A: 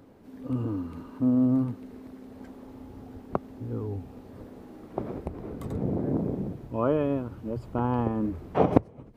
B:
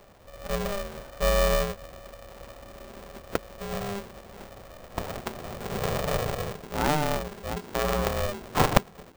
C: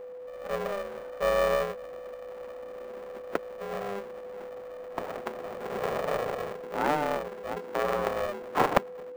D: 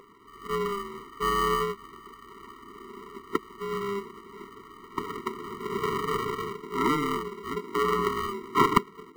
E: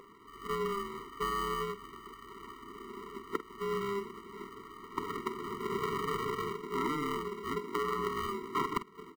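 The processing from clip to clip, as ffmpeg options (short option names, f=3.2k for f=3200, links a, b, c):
-af "aeval=exprs='val(0)*sgn(sin(2*PI*300*n/s))':c=same"
-filter_complex "[0:a]acrossover=split=230 2400:gain=0.126 1 0.251[a][b][c];[a][b][c]amix=inputs=3:normalize=0,aeval=exprs='val(0)+0.0112*sin(2*PI*500*n/s)':c=same"
-af "lowshelf=f=120:g=-4.5,afftfilt=real='re*eq(mod(floor(b*sr/1024/460),2),0)':imag='im*eq(mod(floor(b*sr/1024/460),2),0)':win_size=1024:overlap=0.75,volume=7dB"
-filter_complex "[0:a]acompressor=threshold=-29dB:ratio=5,asplit=2[a][b];[b]adelay=48,volume=-13dB[c];[a][c]amix=inputs=2:normalize=0,volume=-1.5dB"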